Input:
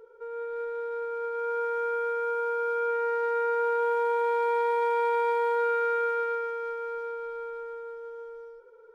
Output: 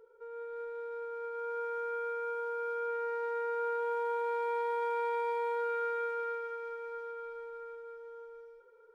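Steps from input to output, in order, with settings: feedback echo behind a high-pass 214 ms, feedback 78%, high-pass 1.5 kHz, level -16.5 dB; trim -7.5 dB

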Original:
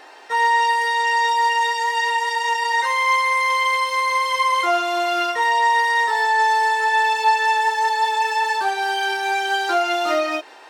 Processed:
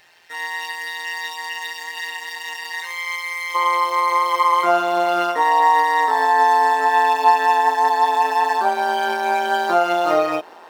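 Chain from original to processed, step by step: median filter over 5 samples; treble shelf 8.2 kHz +6 dB; AM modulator 170 Hz, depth 55%; high-order bell 530 Hz -11 dB 3 oct, from 3.54 s +8 dB; trim -1.5 dB

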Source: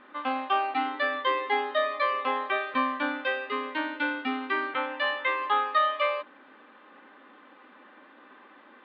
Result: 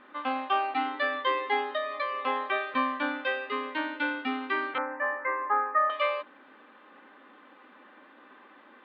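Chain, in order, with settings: 1.62–2.24 s: compression 4:1, threshold -27 dBFS, peak gain reduction 6 dB; 4.78–5.90 s: steep low-pass 2 kHz 48 dB/octave; trim -1 dB

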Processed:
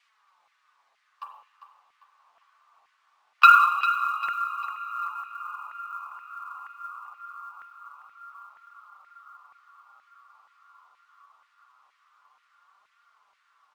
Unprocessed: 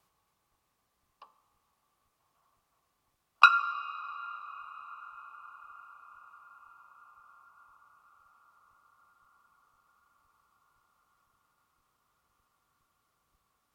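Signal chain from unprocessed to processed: low-pass 4.9 kHz 12 dB/octave; hum notches 60/120/180/240/300/360/420/480/540/600 Hz; in parallel at +2 dB: compression 16:1, threshold -48 dBFS, peak gain reduction 35.5 dB; on the sum: spring tank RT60 1.2 s, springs 34/39 ms, chirp 70 ms, DRR 4.5 dB; flange 0.23 Hz, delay 4.1 ms, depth 7.9 ms, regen -7%; LFO high-pass saw down 2.1 Hz 740–2100 Hz; short-mantissa float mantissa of 4-bit; on a send: feedback delay 398 ms, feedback 39%, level -12 dB; on the sum: trim +4 dB

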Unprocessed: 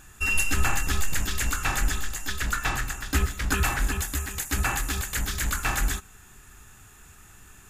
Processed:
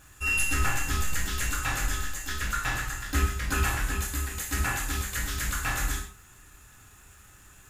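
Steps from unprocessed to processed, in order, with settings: gated-style reverb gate 180 ms falling, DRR -1.5 dB; crackle 510 per s -45 dBFS; trim -6 dB

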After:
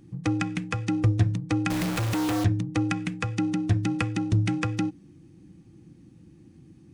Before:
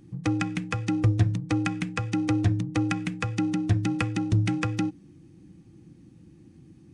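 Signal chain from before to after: 1.70–2.44 s: companded quantiser 2-bit

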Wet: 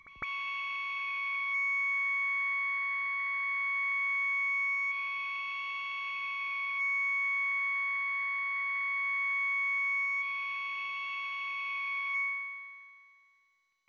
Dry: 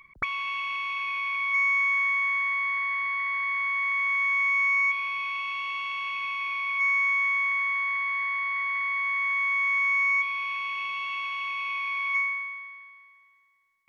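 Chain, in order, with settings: peak limiter -21.5 dBFS, peak gain reduction 4 dB; pre-echo 157 ms -17 dB; trim -5.5 dB; MP2 128 kbps 16 kHz

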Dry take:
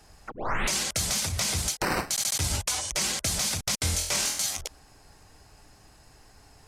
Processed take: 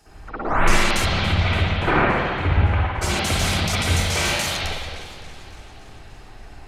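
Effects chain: 1.04–3.01 s: low-pass 4 kHz -> 1.9 kHz 24 dB/octave; reverberation RT60 1.7 s, pre-delay 53 ms, DRR -12.5 dB; modulated delay 284 ms, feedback 67%, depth 107 cents, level -18 dB; trim -1.5 dB

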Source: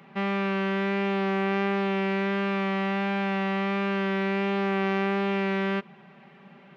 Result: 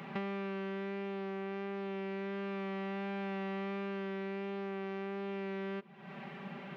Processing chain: dynamic bell 350 Hz, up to +6 dB, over -39 dBFS, Q 0.94; compression 12:1, threshold -42 dBFS, peak gain reduction 23 dB; trim +5.5 dB

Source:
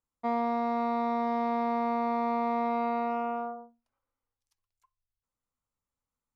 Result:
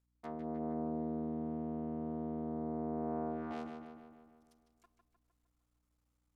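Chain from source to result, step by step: cycle switcher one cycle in 3, muted; peaking EQ 1 kHz -3.5 dB 0.34 oct; low-pass that closes with the level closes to 550 Hz, closed at -27 dBFS; reverse; compression 8:1, threshold -45 dBFS, peak gain reduction 17.5 dB; reverse; hum 60 Hz, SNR 35 dB; on a send: filtered feedback delay 153 ms, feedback 59%, low-pass 4.5 kHz, level -5.5 dB; on the sum: trim +5 dB

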